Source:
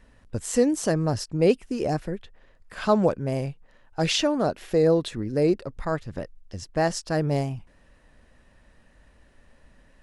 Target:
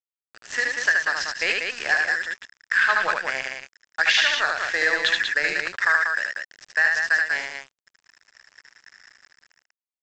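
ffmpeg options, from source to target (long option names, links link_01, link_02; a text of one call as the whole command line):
ffmpeg -i in.wav -filter_complex "[0:a]highpass=frequency=1700:width_type=q:width=8.7,asplit=2[link_01][link_02];[link_02]acrusher=bits=4:mode=log:mix=0:aa=0.000001,volume=-6dB[link_03];[link_01][link_03]amix=inputs=2:normalize=0,dynaudnorm=framelen=140:gausssize=9:maxgain=11.5dB,lowpass=5300,aresample=16000,aeval=exprs='sgn(val(0))*max(abs(val(0))-0.0266,0)':channel_layout=same,aresample=44100,acompressor=threshold=-17dB:ratio=6,aecho=1:1:75.8|189.5:0.708|0.562" out.wav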